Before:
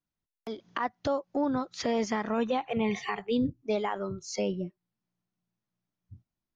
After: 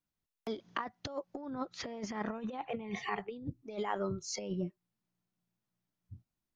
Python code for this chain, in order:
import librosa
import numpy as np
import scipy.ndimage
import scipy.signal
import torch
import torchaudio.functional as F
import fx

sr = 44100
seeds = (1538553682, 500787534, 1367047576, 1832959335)

y = fx.high_shelf(x, sr, hz=4800.0, db=-11.0, at=(1.5, 3.46))
y = fx.over_compress(y, sr, threshold_db=-32.0, ratio=-0.5)
y = y * librosa.db_to_amplitude(-4.5)